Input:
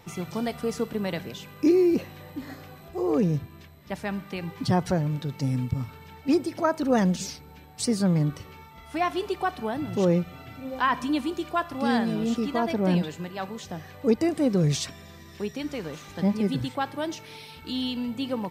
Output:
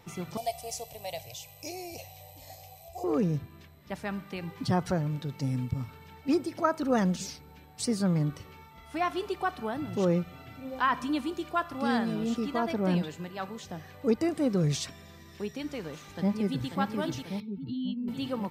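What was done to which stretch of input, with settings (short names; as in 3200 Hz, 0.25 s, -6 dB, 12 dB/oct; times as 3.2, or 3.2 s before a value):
0.37–3.04 EQ curve 130 Hz 0 dB, 200 Hz -27 dB, 380 Hz -19 dB, 700 Hz +8 dB, 1400 Hz -25 dB, 2300 Hz -1 dB, 3700 Hz 0 dB, 6000 Hz +9 dB
16.06–16.68 echo throw 0.54 s, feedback 70%, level -5 dB
17.4–18.08 spectral contrast raised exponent 2
whole clip: dynamic EQ 1300 Hz, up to +5 dB, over -46 dBFS, Q 3.9; gain -4 dB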